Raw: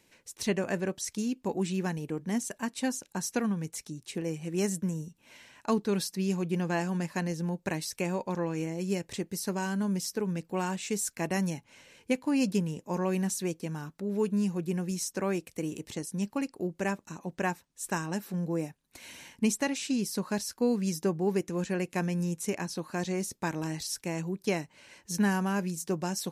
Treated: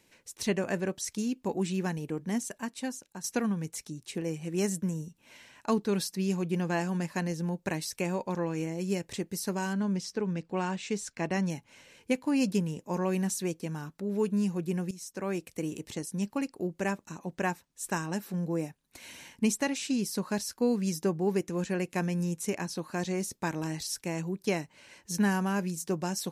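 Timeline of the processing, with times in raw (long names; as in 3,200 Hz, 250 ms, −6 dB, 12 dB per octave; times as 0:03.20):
0:02.26–0:03.24: fade out, to −9.5 dB
0:09.73–0:11.50: low-pass filter 5,400 Hz
0:14.91–0:15.47: fade in, from −15 dB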